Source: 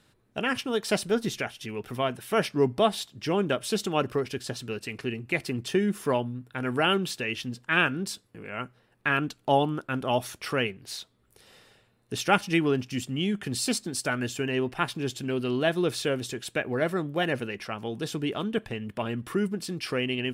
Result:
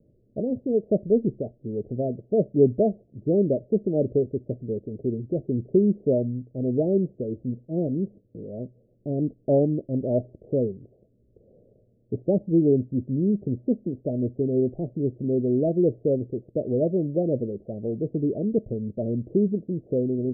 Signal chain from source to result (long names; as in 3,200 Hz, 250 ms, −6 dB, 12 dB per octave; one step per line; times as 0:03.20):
Butterworth low-pass 620 Hz 72 dB per octave
level +5.5 dB